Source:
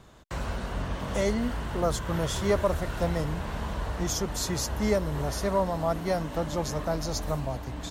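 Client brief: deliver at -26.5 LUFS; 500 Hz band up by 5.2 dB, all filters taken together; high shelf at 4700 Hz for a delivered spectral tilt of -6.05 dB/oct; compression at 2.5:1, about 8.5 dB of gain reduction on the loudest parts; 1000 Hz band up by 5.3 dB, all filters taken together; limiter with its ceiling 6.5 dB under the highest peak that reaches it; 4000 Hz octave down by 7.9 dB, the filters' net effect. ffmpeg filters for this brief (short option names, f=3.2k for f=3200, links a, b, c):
-af "equalizer=f=500:t=o:g=5,equalizer=f=1k:t=o:g=5.5,equalizer=f=4k:t=o:g=-7,highshelf=f=4.7k:g=-6.5,acompressor=threshold=-28dB:ratio=2.5,volume=6.5dB,alimiter=limit=-16dB:level=0:latency=1"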